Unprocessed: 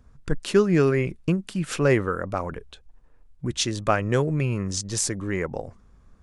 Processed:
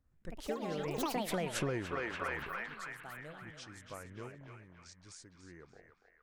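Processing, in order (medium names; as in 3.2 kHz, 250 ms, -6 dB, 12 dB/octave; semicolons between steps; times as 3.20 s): Doppler pass-by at 1.62 s, 34 m/s, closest 3 m; random-step tremolo 3.5 Hz, depth 55%; ever faster or slower copies 116 ms, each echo +5 st, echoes 3; on a send: band-passed feedback delay 287 ms, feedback 65%, band-pass 1.7 kHz, level -4 dB; on the sum: compression 10:1, threshold -37 dBFS, peak gain reduction 17.5 dB; trim +5 dB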